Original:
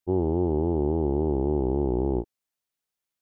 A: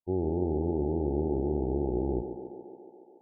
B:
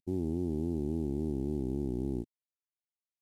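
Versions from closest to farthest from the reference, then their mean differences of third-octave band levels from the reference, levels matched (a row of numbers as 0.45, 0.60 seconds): A, B; 2.0, 6.5 decibels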